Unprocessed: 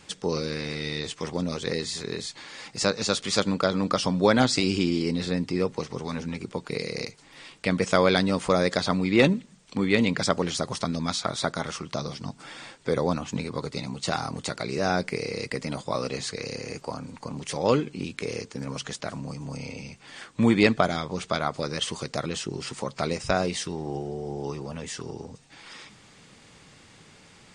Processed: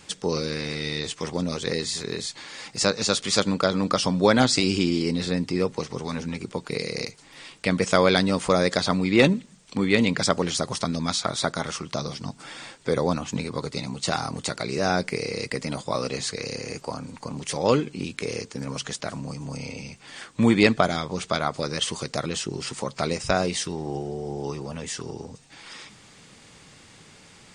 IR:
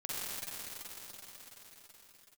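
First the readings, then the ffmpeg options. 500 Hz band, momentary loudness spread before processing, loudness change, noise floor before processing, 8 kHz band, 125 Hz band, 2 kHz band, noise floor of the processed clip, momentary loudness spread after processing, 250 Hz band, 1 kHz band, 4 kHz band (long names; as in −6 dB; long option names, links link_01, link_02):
+1.5 dB, 15 LU, +2.0 dB, −54 dBFS, +4.0 dB, +1.5 dB, +2.0 dB, −51 dBFS, 15 LU, +1.5 dB, +1.5 dB, +3.0 dB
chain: -af "highshelf=frequency=5700:gain=4.5,volume=1.5dB"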